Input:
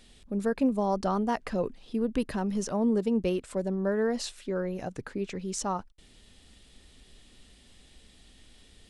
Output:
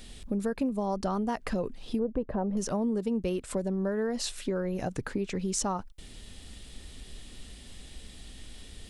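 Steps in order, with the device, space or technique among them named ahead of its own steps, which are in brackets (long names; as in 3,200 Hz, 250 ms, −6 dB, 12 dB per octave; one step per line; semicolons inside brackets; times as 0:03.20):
0:01.99–0:02.57: drawn EQ curve 320 Hz 0 dB, 570 Hz +9 dB, 7,300 Hz −29 dB
ASMR close-microphone chain (low-shelf EQ 150 Hz +5 dB; downward compressor 4 to 1, threshold −35 dBFS, peak gain reduction 13.5 dB; high-shelf EQ 10,000 Hz +6.5 dB)
level +6.5 dB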